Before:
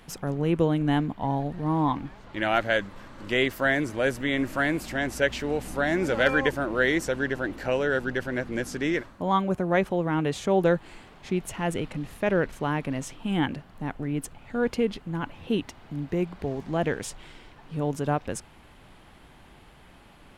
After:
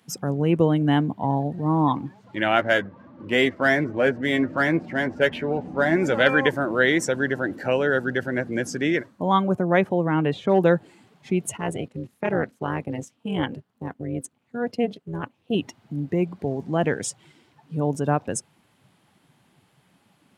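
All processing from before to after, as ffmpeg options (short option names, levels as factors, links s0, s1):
-filter_complex "[0:a]asettb=1/sr,asplit=3[s0][s1][s2];[s0]atrim=end=2.584[s3];[s1]atrim=start=2.58:end=5.96,asetpts=PTS-STARTPTS,afade=t=in:d=0.004:c=qsin,afade=t=out:st=3.376:d=0.004:c=qsin,aemphasis=mode=reproduction:type=50fm,adynamicsmooth=sensitivity=7.5:basefreq=2400,asplit=2[s4][s5];[s5]adelay=12,volume=0.398[s6];[s4][s6]amix=inputs=2:normalize=0,atrim=end_sample=149058[s7];[s2]atrim=start=5.956[s8];[s3][s7]acrossfade=d=0.004:c1=hsin:c2=qsin[s9];[s9][s8]acrossfade=d=0.004:c1=qsin:c2=hsin,asettb=1/sr,asplit=3[s10][s11][s12];[s10]atrim=end=9.824[s13];[s11]atrim=start=9.82:end=10.6,asetpts=PTS-STARTPTS,afade=t=in:d=0.004:c=qsin,afade=t=out:st=0.776:d=0.004:c=qsin,acrossover=split=4200[s14][s15];[s15]acompressor=threshold=0.00158:ratio=4:attack=1:release=60[s16];[s14][s16]amix=inputs=2:normalize=0,asoftclip=type=hard:threshold=0.188[s17];[s12]atrim=start=10.596[s18];[s13][s17]acrossfade=d=0.004:c1=hsin:c2=qsin[s19];[s19][s18]acrossfade=d=0.004:c1=qsin:c2=hsin,asettb=1/sr,asplit=3[s20][s21][s22];[s20]atrim=end=11.574[s23];[s21]atrim=start=11.57:end=15.55,asetpts=PTS-STARTPTS,afade=t=in:d=0.004:c=qsin,afade=t=out:st=3.976:d=0.004:c=qsin,agate=range=0.398:threshold=0.0126:ratio=16:release=100:detection=peak,tremolo=f=240:d=0.857[s24];[s22]atrim=start=15.546[s25];[s23][s24]acrossfade=d=0.004:c1=hsin:c2=qsin[s26];[s26][s25]acrossfade=d=0.004:c1=qsin:c2=hsin,highpass=f=99:w=0.5412,highpass=f=99:w=1.3066,afftdn=nr=14:nf=-40,bass=f=250:g=1,treble=f=4000:g=7,volume=1.5"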